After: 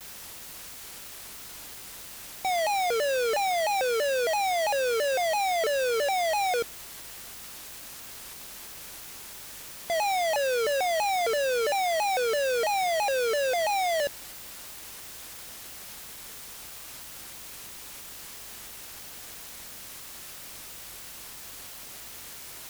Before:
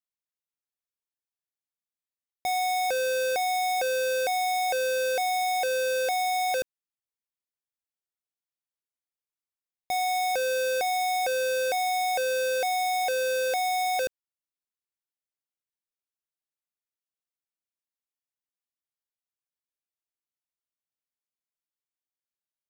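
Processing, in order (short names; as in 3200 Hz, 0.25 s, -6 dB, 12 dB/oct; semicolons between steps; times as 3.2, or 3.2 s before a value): bell 15000 Hz -12 dB 0.65 oct; limiter -31 dBFS, peak gain reduction 6 dB; hum 50 Hz, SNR 33 dB; in parallel at -11 dB: requantised 6-bit, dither triangular; on the sum: shaped vibrato saw down 3 Hz, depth 250 cents; gain +4.5 dB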